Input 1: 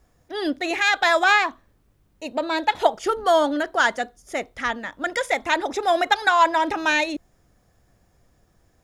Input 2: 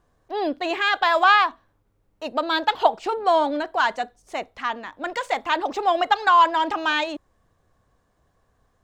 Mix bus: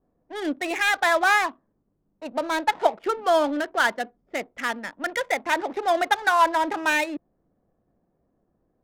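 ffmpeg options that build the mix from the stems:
ffmpeg -i stem1.wav -i stem2.wav -filter_complex "[0:a]highpass=frequency=180:width=0.5412,highpass=frequency=180:width=1.3066,adynamicequalizer=threshold=0.0224:dfrequency=3400:dqfactor=0.8:tfrequency=3400:tqfactor=0.8:attack=5:release=100:ratio=0.375:range=2:mode=cutabove:tftype=bell,lowpass=4500,volume=-1.5dB[link_01];[1:a]acompressor=threshold=-28dB:ratio=6,volume=-1,volume=-9.5dB[link_02];[link_01][link_02]amix=inputs=2:normalize=0,adynamicsmooth=sensitivity=7:basefreq=640" out.wav

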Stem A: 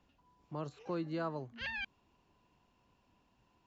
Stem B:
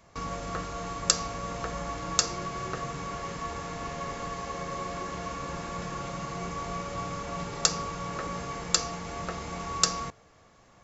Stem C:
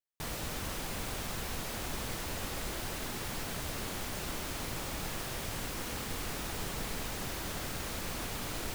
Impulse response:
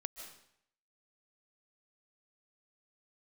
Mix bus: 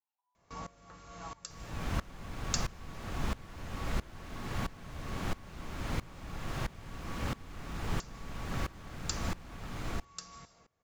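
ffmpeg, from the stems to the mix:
-filter_complex "[0:a]highpass=frequency=840:width_type=q:width=6.7,volume=-12.5dB[link_01];[1:a]adelay=350,volume=-7.5dB,asplit=2[link_02][link_03];[link_03]volume=-8.5dB[link_04];[2:a]lowpass=frequency=1000:poles=1,dynaudnorm=framelen=130:gausssize=5:maxgain=8.5dB,adelay=1300,volume=2dB[link_05];[3:a]atrim=start_sample=2205[link_06];[link_04][link_06]afir=irnorm=-1:irlink=0[link_07];[link_01][link_02][link_05][link_07]amix=inputs=4:normalize=0,adynamicequalizer=threshold=0.00398:dfrequency=480:dqfactor=0.73:tfrequency=480:tqfactor=0.73:attack=5:release=100:ratio=0.375:range=3.5:mode=cutabove:tftype=bell,aeval=exprs='val(0)*pow(10,-21*if(lt(mod(-1.5*n/s,1),2*abs(-1.5)/1000),1-mod(-1.5*n/s,1)/(2*abs(-1.5)/1000),(mod(-1.5*n/s,1)-2*abs(-1.5)/1000)/(1-2*abs(-1.5)/1000))/20)':channel_layout=same"

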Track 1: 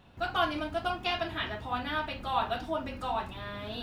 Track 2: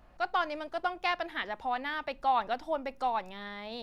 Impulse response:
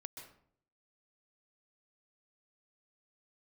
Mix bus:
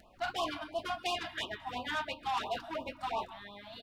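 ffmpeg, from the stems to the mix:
-filter_complex "[0:a]volume=-0.5dB,asplit=2[link_01][link_02];[link_02]volume=-6.5dB[link_03];[1:a]acompressor=mode=upward:threshold=-34dB:ratio=2.5,adelay=2.4,volume=-9.5dB,asplit=2[link_04][link_05];[link_05]apad=whole_len=168571[link_06];[link_01][link_06]sidechaingate=range=-33dB:threshold=-44dB:ratio=16:detection=peak[link_07];[2:a]atrim=start_sample=2205[link_08];[link_03][link_08]afir=irnorm=-1:irlink=0[link_09];[link_07][link_04][link_09]amix=inputs=3:normalize=0,asoftclip=type=tanh:threshold=-28dB,lowshelf=frequency=180:gain=-11,afftfilt=real='re*(1-between(b*sr/1024,390*pow(1800/390,0.5+0.5*sin(2*PI*2.9*pts/sr))/1.41,390*pow(1800/390,0.5+0.5*sin(2*PI*2.9*pts/sr))*1.41))':imag='im*(1-between(b*sr/1024,390*pow(1800/390,0.5+0.5*sin(2*PI*2.9*pts/sr))/1.41,390*pow(1800/390,0.5+0.5*sin(2*PI*2.9*pts/sr))*1.41))':win_size=1024:overlap=0.75"

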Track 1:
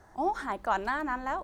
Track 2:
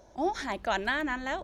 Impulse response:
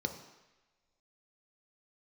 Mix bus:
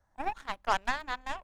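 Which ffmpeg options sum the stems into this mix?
-filter_complex "[0:a]volume=1dB[link_01];[1:a]acompressor=threshold=-32dB:ratio=6,volume=-1,volume=-7.5dB[link_02];[link_01][link_02]amix=inputs=2:normalize=0,equalizer=frequency=380:width=2.3:gain=-10,aeval=exprs='0.2*(cos(1*acos(clip(val(0)/0.2,-1,1)))-cos(1*PI/2))+0.00398*(cos(5*acos(clip(val(0)/0.2,-1,1)))-cos(5*PI/2))+0.00631*(cos(6*acos(clip(val(0)/0.2,-1,1)))-cos(6*PI/2))+0.0282*(cos(7*acos(clip(val(0)/0.2,-1,1)))-cos(7*PI/2))':channel_layout=same,lowshelf=frequency=66:gain=8.5"

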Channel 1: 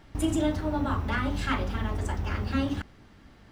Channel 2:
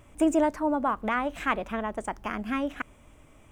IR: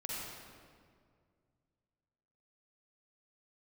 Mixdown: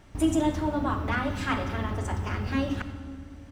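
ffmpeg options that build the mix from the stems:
-filter_complex "[0:a]volume=-4.5dB,asplit=2[link_01][link_02];[link_02]volume=-4dB[link_03];[1:a]equalizer=frequency=5900:width_type=o:width=0.24:gain=13.5,adelay=1.6,volume=-6dB[link_04];[2:a]atrim=start_sample=2205[link_05];[link_03][link_05]afir=irnorm=-1:irlink=0[link_06];[link_01][link_04][link_06]amix=inputs=3:normalize=0"

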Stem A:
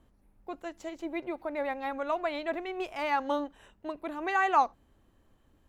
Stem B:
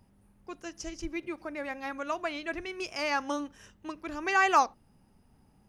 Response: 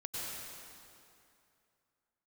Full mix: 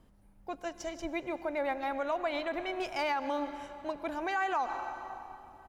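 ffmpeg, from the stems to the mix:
-filter_complex "[0:a]volume=0dB,asplit=3[link_01][link_02][link_03];[link_02]volume=-12.5dB[link_04];[1:a]adelay=1.5,volume=-7dB,asplit=2[link_05][link_06];[link_06]volume=-20dB[link_07];[link_03]apad=whole_len=250720[link_08];[link_05][link_08]sidechaincompress=threshold=-31dB:ratio=8:attack=16:release=390[link_09];[2:a]atrim=start_sample=2205[link_10];[link_04][link_07]amix=inputs=2:normalize=0[link_11];[link_11][link_10]afir=irnorm=-1:irlink=0[link_12];[link_01][link_09][link_12]amix=inputs=3:normalize=0,alimiter=limit=-23dB:level=0:latency=1:release=81"

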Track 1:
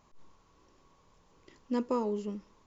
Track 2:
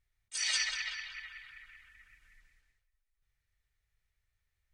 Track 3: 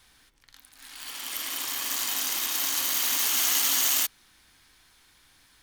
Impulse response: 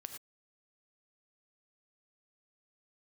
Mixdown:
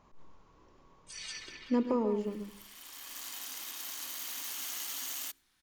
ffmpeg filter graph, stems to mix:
-filter_complex "[0:a]highshelf=frequency=4400:gain=-11.5,volume=1dB,asplit=4[link_01][link_02][link_03][link_04];[link_02]volume=-8.5dB[link_05];[link_03]volume=-9.5dB[link_06];[1:a]bandreject=frequency=1900:width=18,adelay=750,volume=-13.5dB,asplit=2[link_07][link_08];[link_08]volume=-6dB[link_09];[2:a]adelay=1250,volume=-14dB,asplit=2[link_10][link_11];[link_11]volume=-23dB[link_12];[link_04]apad=whole_len=303136[link_13];[link_10][link_13]sidechaincompress=threshold=-42dB:ratio=8:attack=16:release=964[link_14];[3:a]atrim=start_sample=2205[link_15];[link_05][link_09][link_12]amix=inputs=3:normalize=0[link_16];[link_16][link_15]afir=irnorm=-1:irlink=0[link_17];[link_06]aecho=0:1:135:1[link_18];[link_01][link_07][link_14][link_17][link_18]amix=inputs=5:normalize=0,bandreject=frequency=67.52:width_type=h:width=4,bandreject=frequency=135.04:width_type=h:width=4,bandreject=frequency=202.56:width_type=h:width=4,bandreject=frequency=270.08:width_type=h:width=4,bandreject=frequency=337.6:width_type=h:width=4,bandreject=frequency=405.12:width_type=h:width=4,acrossover=split=480[link_19][link_20];[link_20]acompressor=threshold=-34dB:ratio=6[link_21];[link_19][link_21]amix=inputs=2:normalize=0"

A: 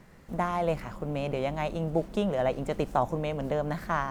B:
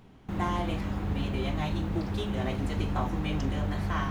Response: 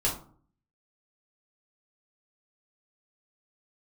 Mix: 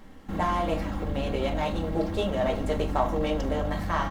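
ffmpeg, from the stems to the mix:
-filter_complex "[0:a]equalizer=frequency=110:width_type=o:width=1.2:gain=-13,volume=-6.5dB,asplit=2[link_01][link_02];[link_02]volume=-4.5dB[link_03];[1:a]asoftclip=type=tanh:threshold=-29dB,bandreject=frequency=2500:width=14,aecho=1:1:3.7:0.85,volume=-1,volume=1dB[link_04];[2:a]atrim=start_sample=2205[link_05];[link_03][link_05]afir=irnorm=-1:irlink=0[link_06];[link_01][link_04][link_06]amix=inputs=3:normalize=0"

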